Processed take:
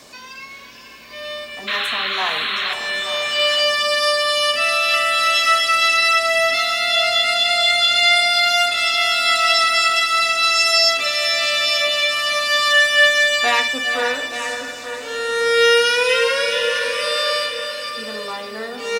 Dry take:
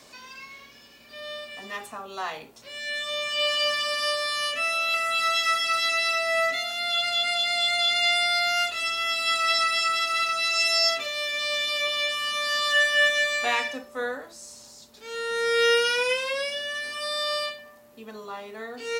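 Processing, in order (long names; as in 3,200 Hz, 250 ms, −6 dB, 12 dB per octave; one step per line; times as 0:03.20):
feedback delay with all-pass diffusion 513 ms, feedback 47%, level −7.5 dB
sound drawn into the spectrogram noise, 0:01.67–0:02.74, 1,000–4,300 Hz −30 dBFS
single-tap delay 877 ms −11 dB
level +7 dB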